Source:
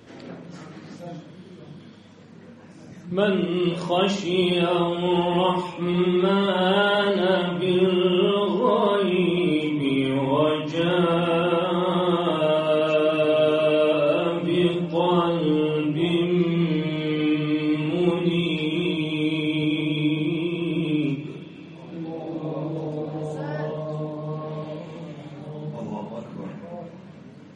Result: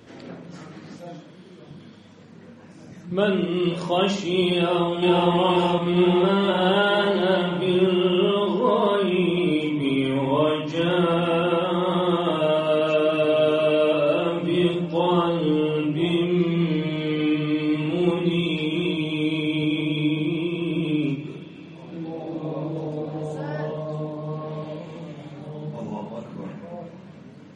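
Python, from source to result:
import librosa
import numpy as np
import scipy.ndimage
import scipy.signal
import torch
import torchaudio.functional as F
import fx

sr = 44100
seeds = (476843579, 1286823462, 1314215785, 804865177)

y = fx.highpass(x, sr, hz=190.0, slope=6, at=(0.99, 1.71))
y = fx.echo_throw(y, sr, start_s=4.55, length_s=0.76, ms=470, feedback_pct=65, wet_db=-1.0)
y = fx.echo_throw(y, sr, start_s=6.82, length_s=0.5, ms=260, feedback_pct=65, wet_db=-16.0)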